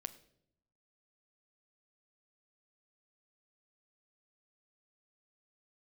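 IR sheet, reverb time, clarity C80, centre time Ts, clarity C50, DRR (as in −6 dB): 0.70 s, 18.0 dB, 4 ms, 16.0 dB, 10.5 dB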